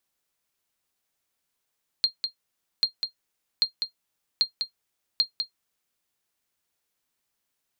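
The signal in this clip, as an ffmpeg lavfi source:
-f lavfi -i "aevalsrc='0.251*(sin(2*PI*4210*mod(t,0.79))*exp(-6.91*mod(t,0.79)/0.11)+0.473*sin(2*PI*4210*max(mod(t,0.79)-0.2,0))*exp(-6.91*max(mod(t,0.79)-0.2,0)/0.11))':d=3.95:s=44100"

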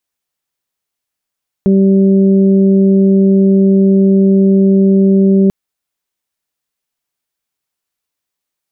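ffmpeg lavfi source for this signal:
-f lavfi -i "aevalsrc='0.473*sin(2*PI*194*t)+0.237*sin(2*PI*388*t)+0.0531*sin(2*PI*582*t)':d=3.84:s=44100"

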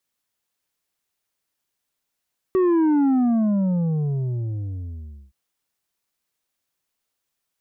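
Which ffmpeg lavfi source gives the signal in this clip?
-f lavfi -i "aevalsrc='0.158*clip((2.77-t)/2.29,0,1)*tanh(2*sin(2*PI*380*2.77/log(65/380)*(exp(log(65/380)*t/2.77)-1)))/tanh(2)':d=2.77:s=44100"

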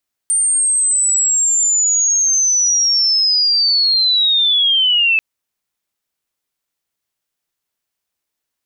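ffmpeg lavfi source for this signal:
-f lavfi -i "aevalsrc='pow(10,(-12+1.5*t/4.89)/20)*sin(2*PI*(8900*t-6300*t*t/(2*4.89)))':d=4.89:s=44100"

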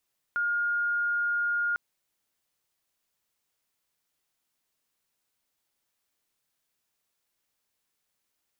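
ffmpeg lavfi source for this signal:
-f lavfi -i "aevalsrc='0.0596*sin(2*PI*1420*t)':d=1.4:s=44100"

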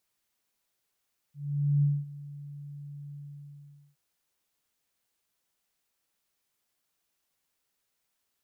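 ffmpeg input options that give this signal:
-f lavfi -i "aevalsrc='0.1*sin(2*PI*144*t)':d=2.619:s=44100,afade=t=in:d=0.485,afade=t=out:st=0.485:d=0.225:silence=0.106,afade=t=out:st=1.8:d=0.819"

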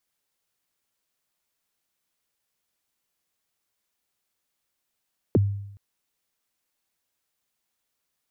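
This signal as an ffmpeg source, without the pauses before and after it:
-f lavfi -i "aevalsrc='0.211*pow(10,-3*t/0.8)*sin(2*PI*(510*0.026/log(100/510)*(exp(log(100/510)*min(t,0.026)/0.026)-1)+100*max(t-0.026,0)))':d=0.42:s=44100"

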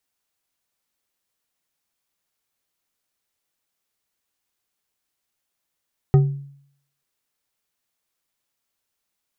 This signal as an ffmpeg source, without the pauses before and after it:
-f lavfi -i "aevalsrc='0.398*pow(10,-3*t/0.64)*sin(2*PI*140*t)+0.15*pow(10,-3*t/0.315)*sin(2*PI*386*t)+0.0562*pow(10,-3*t/0.196)*sin(2*PI*756.6*t)+0.0211*pow(10,-3*t/0.138)*sin(2*PI*1250.6*t)+0.00794*pow(10,-3*t/0.104)*sin(2*PI*1867.6*t)':d=0.89:s=44100"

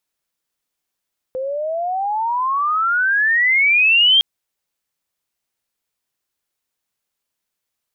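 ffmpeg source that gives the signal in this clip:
-f lavfi -i "aevalsrc='pow(10,(-9+12*(t/2.86-1))/20)*sin(2*PI*510*2.86/(32*log(2)/12)*(exp(32*log(2)/12*t/2.86)-1))':d=2.86:s=44100"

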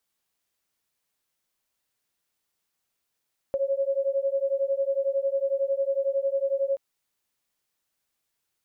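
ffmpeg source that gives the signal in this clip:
-f lavfi -i "aevalsrc='0.0501*(sin(2*PI*543*t)+sin(2*PI*554*t))':d=3.23:s=44100"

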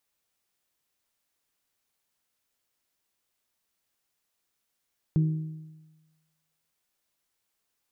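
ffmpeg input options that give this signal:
-f lavfi -i "aevalsrc='0.126*pow(10,-3*t/1.19)*sin(2*PI*157*t)+0.0316*pow(10,-3*t/0.967)*sin(2*PI*314*t)+0.00794*pow(10,-3*t/0.915)*sin(2*PI*376.8*t)+0.002*pow(10,-3*t/0.856)*sin(2*PI*471*t)':d=1.55:s=44100"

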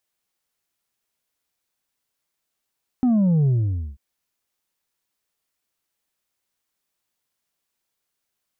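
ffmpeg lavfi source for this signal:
-f lavfi -i "aevalsrc='0.168*clip((0.94-t)/0.5,0,1)*tanh(1.5*sin(2*PI*260*0.94/log(65/260)*(exp(log(65/260)*t/0.94)-1)))/tanh(1.5)':d=0.94:s=44100"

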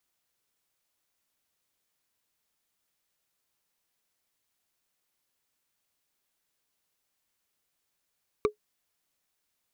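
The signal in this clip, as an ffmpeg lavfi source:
-f lavfi -i "aevalsrc='0.158*pow(10,-3*t/0.11)*sin(2*PI*422*t)+0.0891*pow(10,-3*t/0.033)*sin(2*PI*1163.5*t)+0.0501*pow(10,-3*t/0.015)*sin(2*PI*2280.5*t)+0.0282*pow(10,-3*t/0.008)*sin(2*PI*3769.7*t)+0.0158*pow(10,-3*t/0.005)*sin(2*PI*5629.5*t)':d=0.45:s=44100"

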